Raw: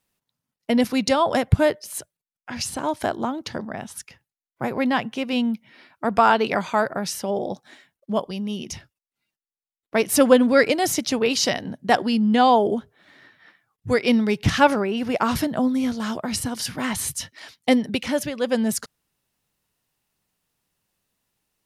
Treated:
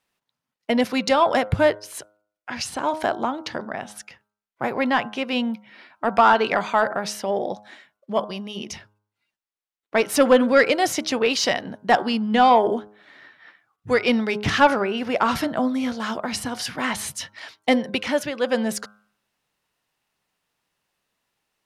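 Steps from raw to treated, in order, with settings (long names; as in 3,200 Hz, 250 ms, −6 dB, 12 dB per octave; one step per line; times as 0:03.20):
hum removal 104.4 Hz, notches 15
mid-hump overdrive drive 11 dB, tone 2,700 Hz, clips at −3 dBFS
level −1 dB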